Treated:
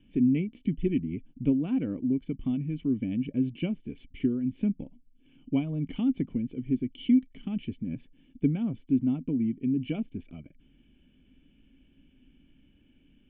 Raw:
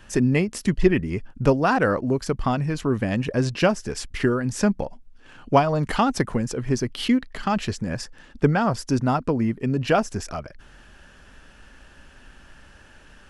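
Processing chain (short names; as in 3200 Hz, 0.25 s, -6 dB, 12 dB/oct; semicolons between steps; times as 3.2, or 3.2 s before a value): vocal tract filter i; bell 160 Hz +4.5 dB 0.23 oct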